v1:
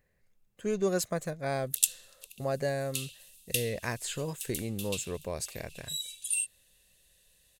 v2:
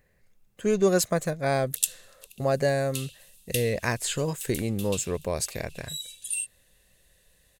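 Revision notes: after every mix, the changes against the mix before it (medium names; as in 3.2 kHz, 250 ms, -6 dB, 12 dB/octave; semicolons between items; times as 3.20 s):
speech +7.0 dB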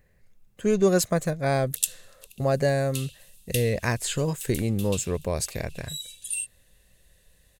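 master: add bass shelf 180 Hz +6 dB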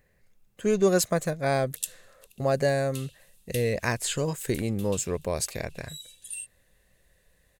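background -7.0 dB; master: add bass shelf 180 Hz -6 dB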